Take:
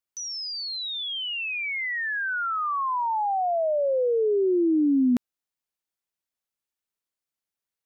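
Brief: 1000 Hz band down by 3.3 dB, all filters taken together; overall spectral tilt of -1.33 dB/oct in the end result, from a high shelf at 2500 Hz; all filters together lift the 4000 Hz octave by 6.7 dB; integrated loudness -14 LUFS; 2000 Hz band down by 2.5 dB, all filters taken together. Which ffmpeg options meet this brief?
-af "equalizer=f=1k:t=o:g=-4,equalizer=f=2k:t=o:g=-6,highshelf=f=2.5k:g=4.5,equalizer=f=4k:t=o:g=6.5,volume=10.5dB"

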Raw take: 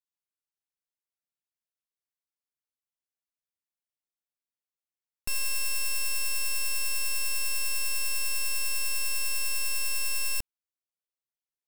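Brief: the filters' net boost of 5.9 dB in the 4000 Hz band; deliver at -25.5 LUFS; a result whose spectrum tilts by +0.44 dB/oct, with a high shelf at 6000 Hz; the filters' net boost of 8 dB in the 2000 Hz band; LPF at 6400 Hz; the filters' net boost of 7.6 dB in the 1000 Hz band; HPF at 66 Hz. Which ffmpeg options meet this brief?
-af "highpass=66,lowpass=6.4k,equalizer=f=1k:t=o:g=6,equalizer=f=2k:t=o:g=6,equalizer=f=4k:t=o:g=8,highshelf=f=6k:g=3.5"

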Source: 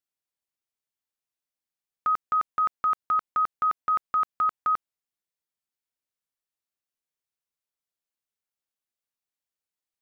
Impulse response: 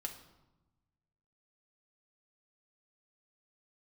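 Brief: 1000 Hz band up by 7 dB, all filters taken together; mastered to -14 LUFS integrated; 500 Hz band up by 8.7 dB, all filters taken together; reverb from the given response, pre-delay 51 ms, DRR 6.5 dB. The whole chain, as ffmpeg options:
-filter_complex "[0:a]equalizer=f=500:t=o:g=8,equalizer=f=1k:t=o:g=9,asplit=2[a][b];[1:a]atrim=start_sample=2205,adelay=51[c];[b][c]afir=irnorm=-1:irlink=0,volume=-5dB[d];[a][d]amix=inputs=2:normalize=0,volume=3dB"

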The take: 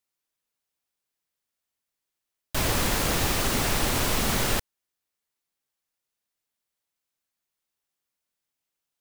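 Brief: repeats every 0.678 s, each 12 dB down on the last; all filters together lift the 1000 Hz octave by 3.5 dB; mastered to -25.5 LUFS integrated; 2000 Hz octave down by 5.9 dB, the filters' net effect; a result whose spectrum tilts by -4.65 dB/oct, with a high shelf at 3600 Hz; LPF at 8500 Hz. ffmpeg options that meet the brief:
-af "lowpass=8.5k,equalizer=f=1k:t=o:g=7,equalizer=f=2k:t=o:g=-8,highshelf=f=3.6k:g=-7.5,aecho=1:1:678|1356|2034:0.251|0.0628|0.0157,volume=2.5dB"

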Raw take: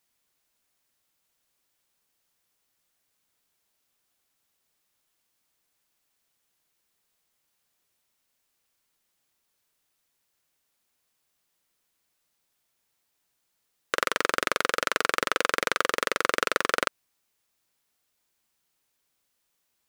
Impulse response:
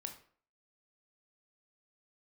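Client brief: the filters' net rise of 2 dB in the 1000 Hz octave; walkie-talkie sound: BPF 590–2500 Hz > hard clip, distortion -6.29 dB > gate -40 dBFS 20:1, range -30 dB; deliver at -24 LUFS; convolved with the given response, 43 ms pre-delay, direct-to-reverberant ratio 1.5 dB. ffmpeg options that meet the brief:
-filter_complex "[0:a]equalizer=f=1k:t=o:g=3.5,asplit=2[a][b];[1:a]atrim=start_sample=2205,adelay=43[c];[b][c]afir=irnorm=-1:irlink=0,volume=1.5dB[d];[a][d]amix=inputs=2:normalize=0,highpass=590,lowpass=2.5k,asoftclip=type=hard:threshold=-18dB,agate=range=-30dB:threshold=-40dB:ratio=20,volume=4dB"

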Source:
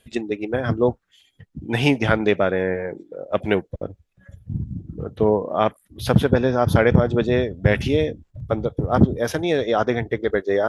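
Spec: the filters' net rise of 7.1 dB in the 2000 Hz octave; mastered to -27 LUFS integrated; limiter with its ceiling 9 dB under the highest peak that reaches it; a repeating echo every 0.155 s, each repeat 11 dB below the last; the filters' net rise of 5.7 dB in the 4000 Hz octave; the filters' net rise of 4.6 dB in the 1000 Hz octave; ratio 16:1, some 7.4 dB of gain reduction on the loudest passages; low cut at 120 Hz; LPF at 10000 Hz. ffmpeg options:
-af "highpass=120,lowpass=10k,equalizer=f=1k:t=o:g=4.5,equalizer=f=2k:t=o:g=6.5,equalizer=f=4k:t=o:g=4.5,acompressor=threshold=-16dB:ratio=16,alimiter=limit=-12dB:level=0:latency=1,aecho=1:1:155|310|465:0.282|0.0789|0.0221,volume=-1.5dB"

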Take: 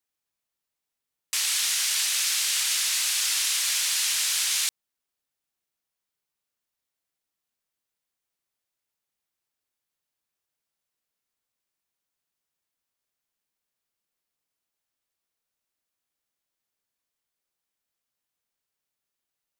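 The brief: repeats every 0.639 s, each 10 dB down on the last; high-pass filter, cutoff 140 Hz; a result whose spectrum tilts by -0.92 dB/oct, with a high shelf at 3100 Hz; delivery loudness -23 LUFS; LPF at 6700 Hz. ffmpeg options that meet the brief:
-af "highpass=140,lowpass=6.7k,highshelf=f=3.1k:g=-5,aecho=1:1:639|1278|1917|2556:0.316|0.101|0.0324|0.0104,volume=5.5dB"

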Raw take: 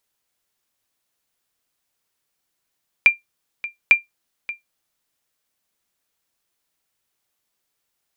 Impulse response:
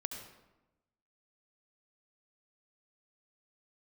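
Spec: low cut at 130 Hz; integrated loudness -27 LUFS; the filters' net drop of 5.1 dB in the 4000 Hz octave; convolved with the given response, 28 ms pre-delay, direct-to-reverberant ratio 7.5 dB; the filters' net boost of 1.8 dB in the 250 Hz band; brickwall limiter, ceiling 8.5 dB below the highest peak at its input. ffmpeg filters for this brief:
-filter_complex "[0:a]highpass=130,equalizer=f=250:t=o:g=3,equalizer=f=4k:t=o:g=-8,alimiter=limit=-13.5dB:level=0:latency=1,asplit=2[a][b];[1:a]atrim=start_sample=2205,adelay=28[c];[b][c]afir=irnorm=-1:irlink=0,volume=-7dB[d];[a][d]amix=inputs=2:normalize=0,volume=3dB"

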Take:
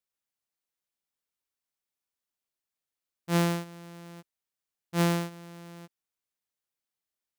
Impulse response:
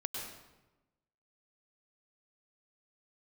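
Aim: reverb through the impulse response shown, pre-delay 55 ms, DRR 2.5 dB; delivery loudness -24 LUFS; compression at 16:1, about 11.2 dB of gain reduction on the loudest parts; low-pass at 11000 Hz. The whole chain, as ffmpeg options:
-filter_complex "[0:a]lowpass=11k,acompressor=threshold=-32dB:ratio=16,asplit=2[a][b];[1:a]atrim=start_sample=2205,adelay=55[c];[b][c]afir=irnorm=-1:irlink=0,volume=-4dB[d];[a][d]amix=inputs=2:normalize=0,volume=16.5dB"

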